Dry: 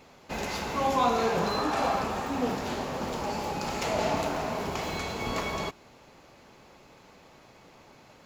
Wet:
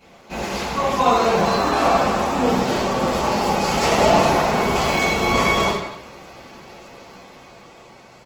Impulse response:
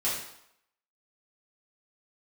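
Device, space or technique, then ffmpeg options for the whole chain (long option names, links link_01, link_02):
speakerphone in a meeting room: -filter_complex "[1:a]atrim=start_sample=2205[link_01];[0:a][link_01]afir=irnorm=-1:irlink=0,asplit=2[link_02][link_03];[link_03]adelay=170,highpass=300,lowpass=3400,asoftclip=type=hard:threshold=-14.5dB,volume=-12dB[link_04];[link_02][link_04]amix=inputs=2:normalize=0,dynaudnorm=framelen=240:gausssize=13:maxgain=6dB" -ar 48000 -c:a libopus -b:a 16k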